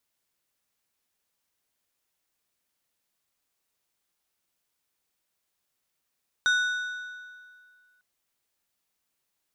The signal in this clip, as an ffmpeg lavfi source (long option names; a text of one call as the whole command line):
ffmpeg -f lavfi -i "aevalsrc='0.112*pow(10,-3*t/2.04)*sin(2*PI*1480*t)+0.0447*pow(10,-3*t/1.55)*sin(2*PI*3700*t)+0.0178*pow(10,-3*t/1.346)*sin(2*PI*5920*t)+0.00708*pow(10,-3*t/1.259)*sin(2*PI*7400*t)+0.00282*pow(10,-3*t/1.163)*sin(2*PI*9620*t)':duration=1.55:sample_rate=44100" out.wav